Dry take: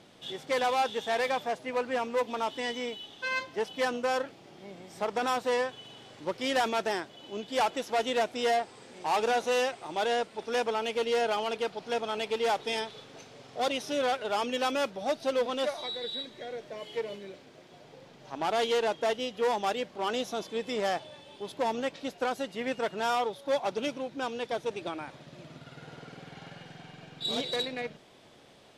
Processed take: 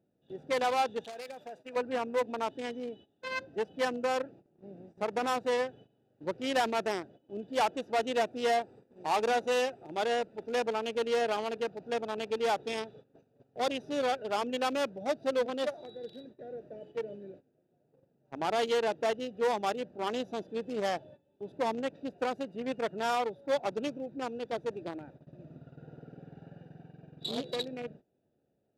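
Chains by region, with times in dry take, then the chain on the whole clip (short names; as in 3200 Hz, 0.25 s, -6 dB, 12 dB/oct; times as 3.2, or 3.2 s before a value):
1.04–1.76 tilt +3.5 dB/oct + compressor 3:1, threshold -32 dBFS
whole clip: Wiener smoothing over 41 samples; HPF 45 Hz; gate -51 dBFS, range -16 dB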